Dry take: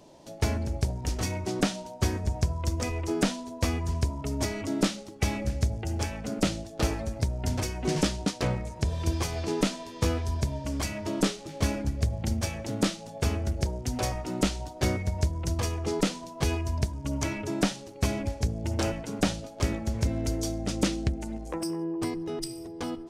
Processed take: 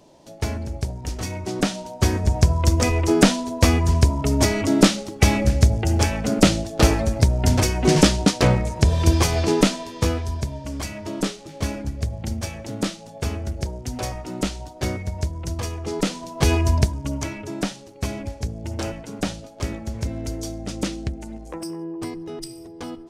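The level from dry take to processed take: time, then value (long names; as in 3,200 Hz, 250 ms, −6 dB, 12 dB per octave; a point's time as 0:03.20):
0:01.24 +1 dB
0:02.53 +11 dB
0:09.40 +11 dB
0:10.51 +1 dB
0:15.87 +1 dB
0:16.69 +12 dB
0:17.32 0 dB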